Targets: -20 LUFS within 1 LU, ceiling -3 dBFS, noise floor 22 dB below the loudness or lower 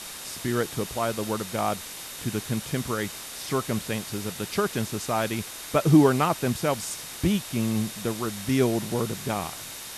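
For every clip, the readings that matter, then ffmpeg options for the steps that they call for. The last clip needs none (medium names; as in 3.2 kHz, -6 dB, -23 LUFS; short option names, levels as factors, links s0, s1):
steady tone 3.7 kHz; tone level -49 dBFS; noise floor -39 dBFS; noise floor target -49 dBFS; loudness -27.0 LUFS; peak level -6.0 dBFS; loudness target -20.0 LUFS
-> -af "bandreject=f=3700:w=30"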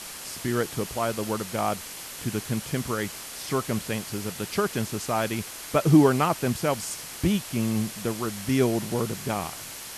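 steady tone not found; noise floor -39 dBFS; noise floor target -49 dBFS
-> -af "afftdn=nr=10:nf=-39"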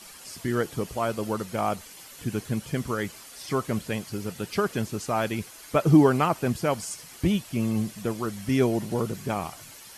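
noise floor -46 dBFS; noise floor target -49 dBFS
-> -af "afftdn=nr=6:nf=-46"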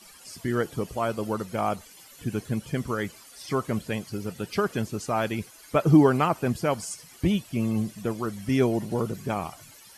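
noise floor -50 dBFS; loudness -27.5 LUFS; peak level -6.5 dBFS; loudness target -20.0 LUFS
-> -af "volume=2.37,alimiter=limit=0.708:level=0:latency=1"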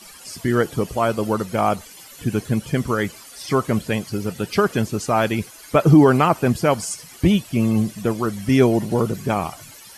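loudness -20.5 LUFS; peak level -3.0 dBFS; noise floor -43 dBFS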